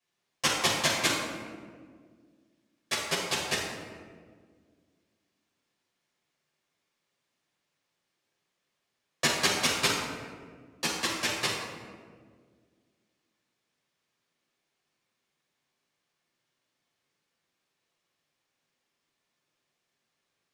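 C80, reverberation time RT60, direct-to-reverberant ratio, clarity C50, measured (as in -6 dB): 3.5 dB, 1.8 s, -7.5 dB, 1.0 dB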